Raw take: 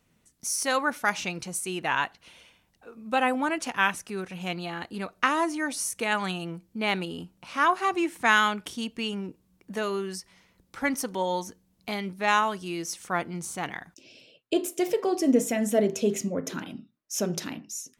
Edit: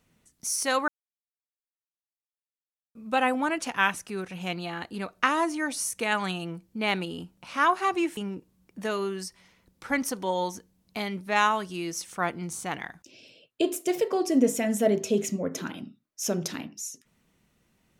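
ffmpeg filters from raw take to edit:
ffmpeg -i in.wav -filter_complex "[0:a]asplit=4[link_01][link_02][link_03][link_04];[link_01]atrim=end=0.88,asetpts=PTS-STARTPTS,afade=type=out:start_time=0.876:duration=0.004:curve=hsin[link_05];[link_02]atrim=start=0.88:end=2.95,asetpts=PTS-STARTPTS,volume=0[link_06];[link_03]atrim=start=2.95:end=8.172,asetpts=PTS-STARTPTS,afade=type=in:duration=0.004:curve=hsin[link_07];[link_04]atrim=start=9.088[link_08];[link_05][link_06][link_07]concat=n=3:v=0:a=1[link_09];[link_09][link_08]acrossfade=duration=0.004:curve1=hsin:curve2=hsin" out.wav

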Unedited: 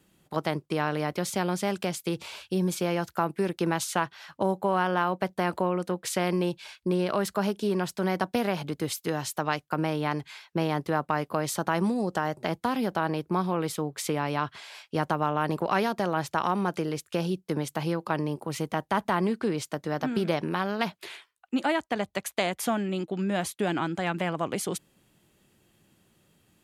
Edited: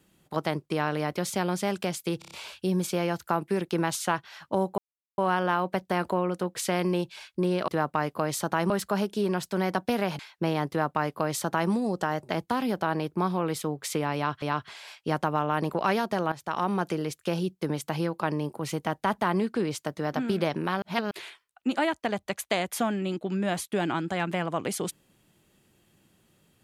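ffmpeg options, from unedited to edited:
ffmpeg -i in.wav -filter_complex "[0:a]asplit=13[link_01][link_02][link_03][link_04][link_05][link_06][link_07][link_08][link_09][link_10][link_11][link_12][link_13];[link_01]atrim=end=2.222[link_14];[link_02]atrim=start=2.188:end=2.222[link_15];[link_03]atrim=start=2.188:end=2.222[link_16];[link_04]atrim=start=2.188:end=2.222[link_17];[link_05]atrim=start=2.188:end=4.66,asetpts=PTS-STARTPTS,afade=type=out:start_time=2.468:duration=0.004:curve=hsin,apad=pad_dur=0.4[link_18];[link_06]atrim=start=4.66:end=7.162,asetpts=PTS-STARTPTS,afade=type=in:duration=0.004:curve=hsin[link_19];[link_07]atrim=start=10.828:end=11.852[link_20];[link_08]atrim=start=7.158:end=8.652[link_21];[link_09]atrim=start=10.328:end=14.562[link_22];[link_10]atrim=start=14.288:end=16.19,asetpts=PTS-STARTPTS,afade=type=out:start_time=1.898:duration=0.004:curve=hsin:silence=0.211349[link_23];[link_11]atrim=start=16.19:end=20.692,asetpts=PTS-STARTPTS,afade=type=in:duration=0.36:silence=0.211349[link_24];[link_12]atrim=start=20.688:end=20.982,asetpts=PTS-STARTPTS,areverse[link_25];[link_13]atrim=start=20.978[link_26];[link_14][link_15]acrossfade=duration=0.004:curve1=hsin:curve2=hsin[link_27];[link_27][link_16]acrossfade=duration=0.004:curve1=hsin:curve2=hsin[link_28];[link_28][link_17]acrossfade=duration=0.004:curve1=hsin:curve2=hsin[link_29];[link_18][link_19]concat=n=2:v=0:a=1[link_30];[link_29][link_30]acrossfade=duration=0.004:curve1=hsin:curve2=hsin[link_31];[link_31][link_20]acrossfade=duration=0.004:curve1=hsin:curve2=hsin[link_32];[link_32][link_21]acrossfade=duration=0.004:curve1=hsin:curve2=hsin[link_33];[link_33][link_22]acrossfade=duration=0.004:curve1=hsin:curve2=hsin[link_34];[link_23][link_24]concat=n=2:v=0:a=1[link_35];[link_34][link_35]acrossfade=duration=0.004:curve1=hsin:curve2=hsin[link_36];[link_36][link_25]acrossfade=duration=0.004:curve1=hsin:curve2=hsin[link_37];[link_37][link_26]acrossfade=duration=0.004:curve1=hsin:curve2=hsin" out.wav

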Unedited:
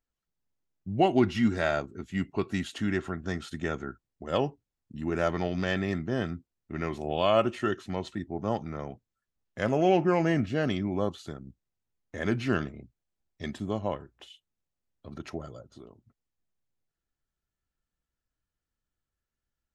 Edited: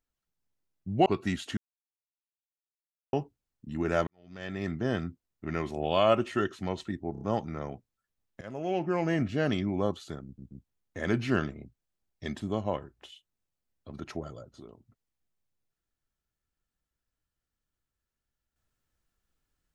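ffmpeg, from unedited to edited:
ffmpeg -i in.wav -filter_complex "[0:a]asplit=12[link_01][link_02][link_03][link_04][link_05][link_06][link_07][link_08][link_09][link_10][link_11][link_12];[link_01]atrim=end=1.062[link_13];[link_02]atrim=start=2.328:end=2.84,asetpts=PTS-STARTPTS,afade=type=out:start_time=0.508:duration=0.004:curve=hsin[link_14];[link_03]atrim=start=2.84:end=4.4,asetpts=PTS-STARTPTS,volume=0[link_15];[link_04]atrim=start=4.4:end=5.34,asetpts=PTS-STARTPTS,afade=type=in:duration=0.004:curve=hsin,afade=type=out:start_time=0.936:duration=0.004:curve=hsin[link_16];[link_05]atrim=start=5.34:end=8.422,asetpts=PTS-STARTPTS,afade=type=in:duration=0.69:curve=qua[link_17];[link_06]atrim=start=8.388:end=8.422[link_18];[link_07]atrim=start=8.388:end=8.422[link_19];[link_08]atrim=start=8.388:end=9.59,asetpts=PTS-STARTPTS,afade=type=out:start_time=1.198:duration=0.004:curve=hsin:silence=0.125893[link_20];[link_09]atrim=start=9.59:end=11.562,asetpts=PTS-STARTPTS,afade=type=in:duration=1:silence=0.125893[link_21];[link_10]atrim=start=11.428:end=11.562[link_22];[link_11]atrim=start=11.428:end=11.562[link_23];[link_12]atrim=start=11.818[link_24];[link_14][link_15][link_16][link_17]concat=n=4:v=0:a=1[link_25];[link_13][link_25]acrossfade=duration=0.004:curve1=hsin:curve2=hsin[link_26];[link_26][link_18]acrossfade=duration=0.004:curve1=hsin:curve2=hsin[link_27];[link_27][link_19]acrossfade=duration=0.004:curve1=hsin:curve2=hsin[link_28];[link_20][link_21]concat=n=2:v=0:a=1[link_29];[link_28][link_29]acrossfade=duration=0.004:curve1=hsin:curve2=hsin[link_30];[link_30][link_22]acrossfade=duration=0.004:curve1=hsin:curve2=hsin[link_31];[link_31][link_23]acrossfade=duration=0.004:curve1=hsin:curve2=hsin[link_32];[link_32][link_24]acrossfade=duration=0.004:curve1=hsin:curve2=hsin" out.wav

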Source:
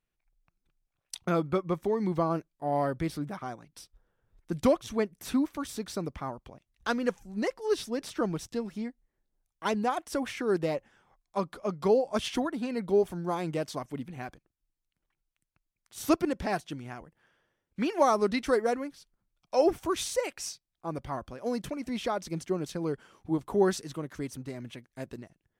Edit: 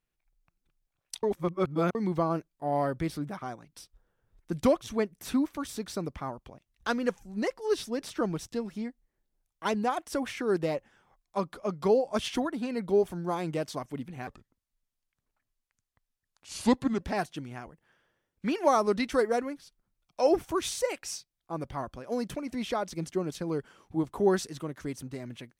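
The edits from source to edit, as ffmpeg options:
ffmpeg -i in.wav -filter_complex "[0:a]asplit=5[link_01][link_02][link_03][link_04][link_05];[link_01]atrim=end=1.232[link_06];[link_02]atrim=start=1.228:end=1.952,asetpts=PTS-STARTPTS,areverse[link_07];[link_03]atrim=start=1.948:end=14.274[link_08];[link_04]atrim=start=14.27:end=16.35,asetpts=PTS-STARTPTS,asetrate=33516,aresample=44100[link_09];[link_05]atrim=start=16.346[link_10];[link_06][link_07]acrossfade=duration=0.004:curve1=hsin:curve2=hsin[link_11];[link_11][link_08]acrossfade=duration=0.004:curve1=hsin:curve2=hsin[link_12];[link_12][link_09]acrossfade=duration=0.004:curve1=hsin:curve2=hsin[link_13];[link_13][link_10]acrossfade=duration=0.004:curve1=hsin:curve2=hsin" out.wav

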